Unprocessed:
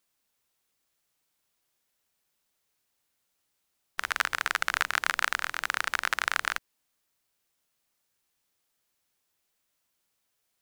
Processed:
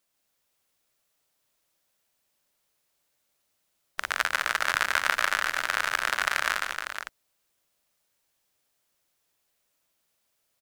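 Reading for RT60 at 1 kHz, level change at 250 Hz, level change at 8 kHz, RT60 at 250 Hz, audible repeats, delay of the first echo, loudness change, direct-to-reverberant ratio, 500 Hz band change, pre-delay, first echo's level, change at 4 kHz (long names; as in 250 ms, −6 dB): no reverb audible, +2.5 dB, +2.5 dB, no reverb audible, 4, 145 ms, +2.0 dB, no reverb audible, +5.5 dB, no reverb audible, −3.5 dB, +2.5 dB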